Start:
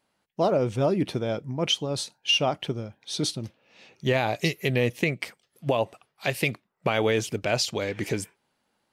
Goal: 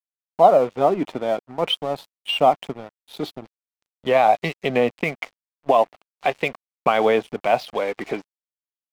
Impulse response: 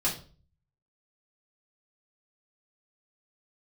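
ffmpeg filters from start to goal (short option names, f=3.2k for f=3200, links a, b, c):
-af "aphaser=in_gain=1:out_gain=1:delay=3.5:decay=0.27:speed=0.42:type=triangular,highpass=f=190:w=0.5412,highpass=f=190:w=1.3066,equalizer=f=210:t=q:w=4:g=-3,equalizer=f=340:t=q:w=4:g=-6,equalizer=f=740:t=q:w=4:g=9,equalizer=f=1.1k:t=q:w=4:g=6,equalizer=f=1.7k:t=q:w=4:g=-5,equalizer=f=2.7k:t=q:w=4:g=-4,lowpass=f=3.2k:w=0.5412,lowpass=f=3.2k:w=1.3066,aeval=exprs='sgn(val(0))*max(abs(val(0))-0.00668,0)':c=same,volume=5dB"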